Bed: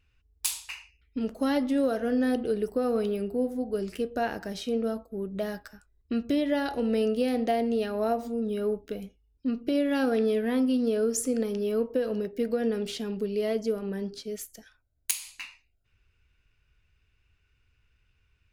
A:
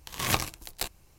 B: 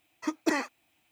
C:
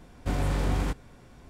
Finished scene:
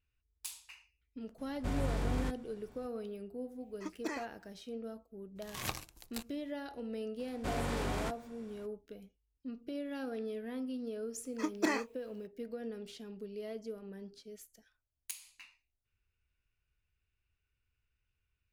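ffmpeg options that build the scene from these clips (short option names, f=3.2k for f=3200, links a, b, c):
-filter_complex "[3:a]asplit=2[a][b];[2:a]asplit=2[c][d];[0:a]volume=-14.5dB[e];[b]lowshelf=f=200:g=-11[f];[d]asplit=2[g][h];[h]adelay=26,volume=-11.5dB[i];[g][i]amix=inputs=2:normalize=0[j];[a]atrim=end=1.49,asetpts=PTS-STARTPTS,volume=-7.5dB,afade=t=in:d=0.004:c=hsin,afade=t=out:st=1.486:d=0.004:c=hsin,adelay=1380[k];[c]atrim=end=1.11,asetpts=PTS-STARTPTS,volume=-12dB,afade=t=in:d=0.004:c=hsin,afade=t=out:st=1.106:d=0.004:c=hsin,adelay=3580[l];[1:a]atrim=end=1.18,asetpts=PTS-STARTPTS,volume=-12dB,afade=t=in:d=0.02,afade=t=out:st=1.16:d=0.02,adelay=5350[m];[f]atrim=end=1.49,asetpts=PTS-STARTPTS,volume=-3dB,afade=t=in:d=0.02,afade=t=out:st=1.47:d=0.02,adelay=7180[n];[j]atrim=end=1.11,asetpts=PTS-STARTPTS,volume=-4.5dB,afade=t=in:d=0.004:c=hsin,afade=t=out:st=1.106:d=0.004:c=hsin,adelay=11160[o];[e][k][l][m][n][o]amix=inputs=6:normalize=0"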